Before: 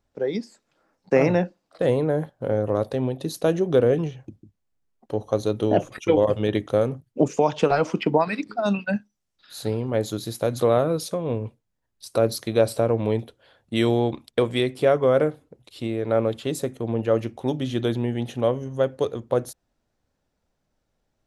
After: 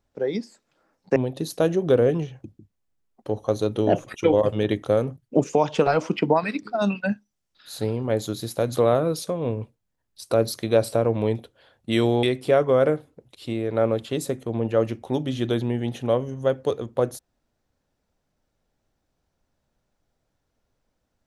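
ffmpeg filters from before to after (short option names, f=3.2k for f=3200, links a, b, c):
-filter_complex "[0:a]asplit=3[a][b][c];[a]atrim=end=1.162[d];[b]atrim=start=2.998:end=14.072[e];[c]atrim=start=14.568[f];[d][e]acrossfade=d=0.004:c1=hsin:c2=hsin[g];[g][f]acrossfade=d=0.004:c1=hsin:c2=hsin"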